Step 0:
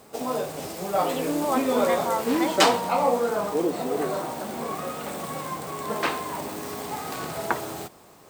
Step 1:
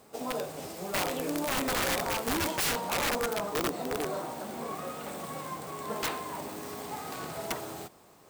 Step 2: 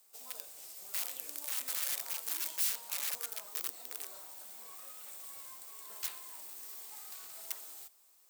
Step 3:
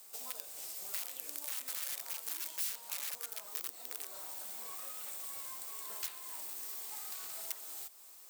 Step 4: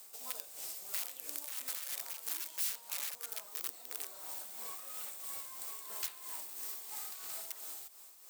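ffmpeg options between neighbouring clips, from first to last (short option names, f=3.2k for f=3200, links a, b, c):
-af "aeval=exprs='(mod(7.5*val(0)+1,2)-1)/7.5':c=same,volume=-6dB"
-af "aderivative,volume=-3dB"
-af "acompressor=threshold=-55dB:ratio=2,volume=10dB"
-af "tremolo=f=3:d=0.5,volume=2dB"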